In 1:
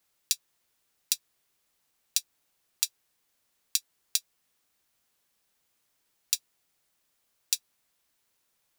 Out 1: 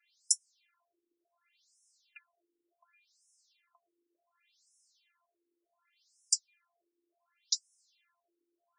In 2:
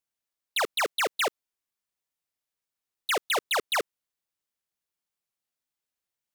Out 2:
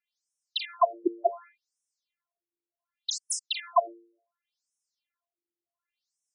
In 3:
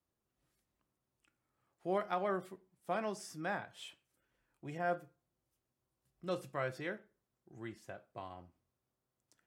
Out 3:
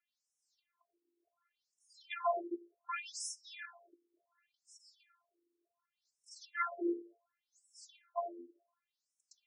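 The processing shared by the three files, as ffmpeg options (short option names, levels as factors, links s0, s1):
-filter_complex "[0:a]bandreject=f=109.8:t=h:w=4,bandreject=f=219.6:t=h:w=4,bandreject=f=329.4:t=h:w=4,bandreject=f=439.2:t=h:w=4,bandreject=f=549:t=h:w=4,bandreject=f=658.8:t=h:w=4,bandreject=f=768.6:t=h:w=4,bandreject=f=878.4:t=h:w=4,bandreject=f=988.2:t=h:w=4,bandreject=f=1098:t=h:w=4,bandreject=f=1207.8:t=h:w=4,bandreject=f=1317.6:t=h:w=4,bandreject=f=1427.4:t=h:w=4,bandreject=f=1537.2:t=h:w=4,bandreject=f=1647:t=h:w=4,bandreject=f=1756.8:t=h:w=4,bandreject=f=1866.6:t=h:w=4,bandreject=f=1976.4:t=h:w=4,bandreject=f=2086.2:t=h:w=4,bandreject=f=2196:t=h:w=4,bandreject=f=2305.8:t=h:w=4,bandreject=f=2415.6:t=h:w=4,acrossover=split=210|1600|5500[s0][s1][s2][s3];[s2]acompressor=threshold=0.00562:ratio=6[s4];[s0][s1][s4][s3]amix=inputs=4:normalize=0,afftfilt=real='hypot(re,im)*cos(PI*b)':imag='0':win_size=512:overlap=0.75,alimiter=level_in=2.66:limit=0.891:release=50:level=0:latency=1,afftfilt=real='re*between(b*sr/1024,350*pow(7400/350,0.5+0.5*sin(2*PI*0.68*pts/sr))/1.41,350*pow(7400/350,0.5+0.5*sin(2*PI*0.68*pts/sr))*1.41)':imag='im*between(b*sr/1024,350*pow(7400/350,0.5+0.5*sin(2*PI*0.68*pts/sr))/1.41,350*pow(7400/350,0.5+0.5*sin(2*PI*0.68*pts/sr))*1.41)':win_size=1024:overlap=0.75,volume=1.68"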